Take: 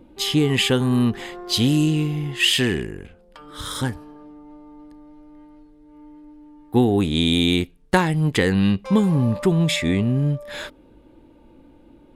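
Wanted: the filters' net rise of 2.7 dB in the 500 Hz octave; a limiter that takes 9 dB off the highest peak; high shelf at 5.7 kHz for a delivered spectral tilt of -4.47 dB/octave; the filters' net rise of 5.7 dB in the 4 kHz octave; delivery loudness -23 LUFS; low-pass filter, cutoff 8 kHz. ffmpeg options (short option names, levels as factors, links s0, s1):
-af "lowpass=8000,equalizer=f=500:t=o:g=3.5,equalizer=f=4000:t=o:g=6,highshelf=f=5700:g=4.5,volume=0.75,alimiter=limit=0.237:level=0:latency=1"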